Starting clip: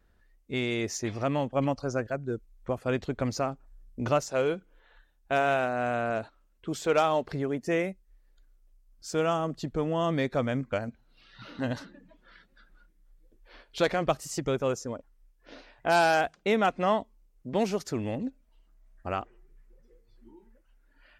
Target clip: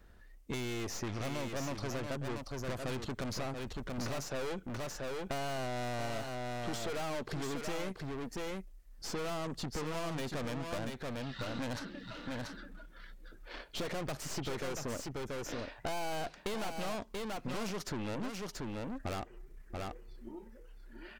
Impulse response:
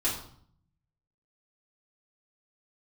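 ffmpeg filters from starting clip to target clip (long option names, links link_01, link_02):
-filter_complex "[0:a]aeval=exprs='(tanh(89.1*val(0)+0.65)-tanh(0.65))/89.1':channel_layout=same,asplit=2[link_01][link_02];[link_02]aecho=0:1:683:0.447[link_03];[link_01][link_03]amix=inputs=2:normalize=0,acrossover=split=1000|4400[link_04][link_05][link_06];[link_04]acompressor=threshold=-46dB:ratio=4[link_07];[link_05]acompressor=threshold=-55dB:ratio=4[link_08];[link_06]acompressor=threshold=-59dB:ratio=4[link_09];[link_07][link_08][link_09]amix=inputs=3:normalize=0,volume=10dB"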